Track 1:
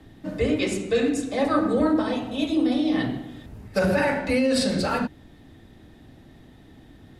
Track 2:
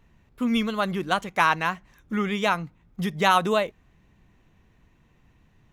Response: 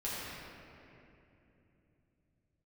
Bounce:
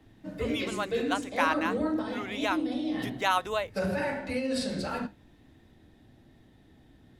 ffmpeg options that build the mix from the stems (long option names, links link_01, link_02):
-filter_complex "[0:a]flanger=delay=8.6:depth=8.8:regen=-56:speed=0.48:shape=sinusoidal,volume=-4.5dB[link_01];[1:a]highpass=470,volume=-6dB[link_02];[link_01][link_02]amix=inputs=2:normalize=0,bandreject=frequency=1200:width=17"